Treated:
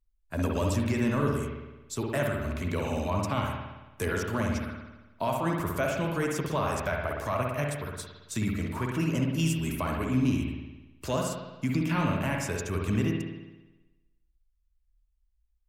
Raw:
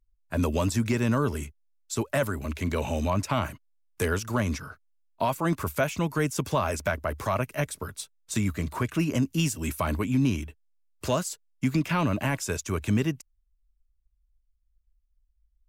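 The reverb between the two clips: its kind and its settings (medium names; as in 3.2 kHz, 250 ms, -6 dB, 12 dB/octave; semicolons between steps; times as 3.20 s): spring tank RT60 1.1 s, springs 55 ms, chirp 25 ms, DRR 0 dB; trim -4.5 dB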